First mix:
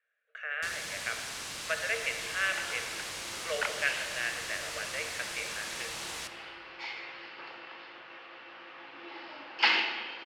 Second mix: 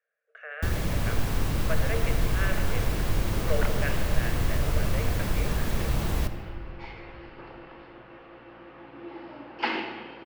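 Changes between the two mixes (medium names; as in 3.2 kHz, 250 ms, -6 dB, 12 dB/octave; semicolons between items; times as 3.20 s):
first sound +8.5 dB; master: remove frequency weighting ITU-R 468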